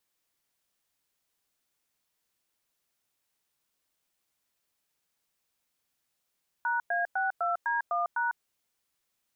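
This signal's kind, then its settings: DTMF "#A62D1#", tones 0.15 s, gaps 0.102 s, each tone -28.5 dBFS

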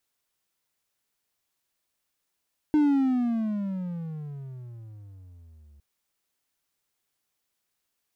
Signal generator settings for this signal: gliding synth tone triangle, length 3.06 s, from 306 Hz, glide -25.5 st, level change -34 dB, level -15 dB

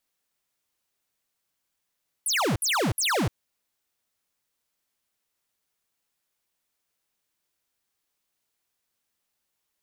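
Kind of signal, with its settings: burst of laser zaps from 12000 Hz, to 88 Hz, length 0.30 s square, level -24 dB, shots 3, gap 0.06 s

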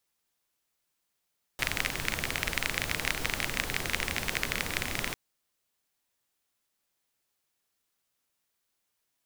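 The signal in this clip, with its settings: rain from filtered ticks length 3.55 s, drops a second 26, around 2100 Hz, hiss -1 dB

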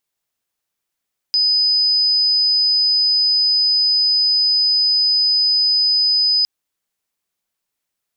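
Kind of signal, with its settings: tone sine 5000 Hz -12.5 dBFS 5.11 s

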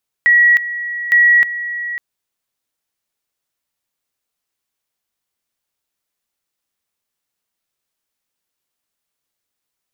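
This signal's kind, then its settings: two-level tone 1920 Hz -7 dBFS, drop 13.5 dB, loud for 0.31 s, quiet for 0.55 s, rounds 2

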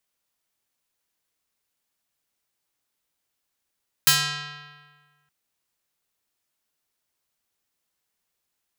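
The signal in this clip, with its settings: plucked string D3, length 1.22 s, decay 1.59 s, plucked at 0.5, medium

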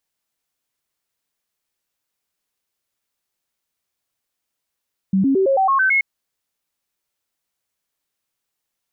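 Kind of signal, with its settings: stepped sine 192 Hz up, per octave 2, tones 8, 0.11 s, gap 0.00 s -13 dBFS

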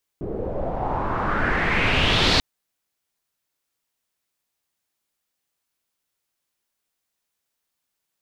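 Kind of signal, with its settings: swept filtered noise pink, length 2.19 s lowpass, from 410 Hz, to 4400 Hz, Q 3.3, exponential, gain ramp +10 dB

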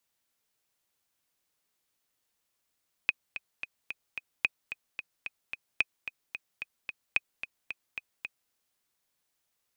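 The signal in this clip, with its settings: metronome 221 bpm, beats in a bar 5, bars 4, 2510 Hz, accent 12 dB -10.5 dBFS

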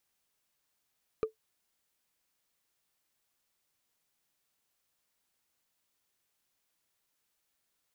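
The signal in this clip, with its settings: wood hit, lowest mode 439 Hz, decay 0.12 s, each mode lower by 9 dB, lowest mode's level -22 dB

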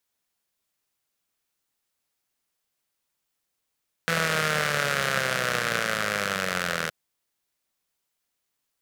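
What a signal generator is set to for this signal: four-cylinder engine model, changing speed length 2.82 s, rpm 5000, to 2400, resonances 180/540/1400 Hz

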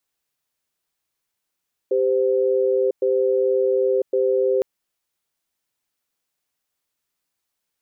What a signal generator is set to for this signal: cadence 393 Hz, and 516 Hz, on 1.00 s, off 0.11 s, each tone -19 dBFS 2.71 s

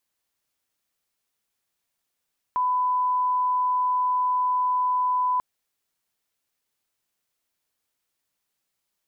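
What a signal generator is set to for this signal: line-up tone -20 dBFS 2.84 s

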